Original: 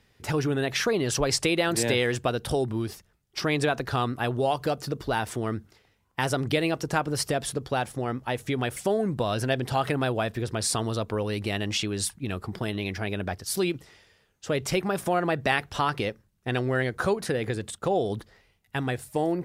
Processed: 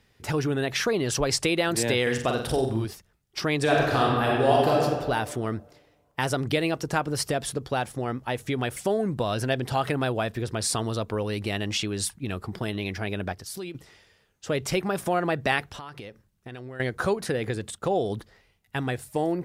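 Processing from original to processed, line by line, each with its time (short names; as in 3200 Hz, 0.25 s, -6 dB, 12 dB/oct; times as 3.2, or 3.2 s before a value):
2.02–2.85 flutter echo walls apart 7.8 m, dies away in 0.51 s
3.62–4.83 reverb throw, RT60 1.6 s, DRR -4 dB
13.32–13.75 compressor 2.5:1, threshold -37 dBFS
15.67–16.8 compressor, threshold -37 dBFS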